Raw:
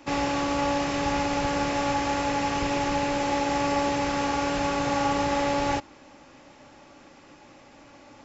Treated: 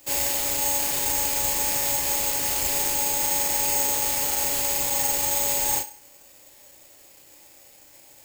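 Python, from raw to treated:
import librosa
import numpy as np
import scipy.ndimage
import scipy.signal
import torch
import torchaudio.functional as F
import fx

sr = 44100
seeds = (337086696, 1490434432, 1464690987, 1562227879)

p1 = fx.high_shelf(x, sr, hz=2800.0, db=10.0)
p2 = fx.fixed_phaser(p1, sr, hz=520.0, stages=4)
p3 = fx.quant_companded(p2, sr, bits=2)
p4 = p2 + F.gain(torch.from_numpy(p3), -10.5).numpy()
p5 = fx.doubler(p4, sr, ms=34.0, db=-3.0)
p6 = p5 + fx.echo_banded(p5, sr, ms=68, feedback_pct=43, hz=1300.0, wet_db=-10.0, dry=0)
p7 = (np.kron(p6[::6], np.eye(6)[0]) * 6)[:len(p6)]
y = F.gain(torch.from_numpy(p7), -8.5).numpy()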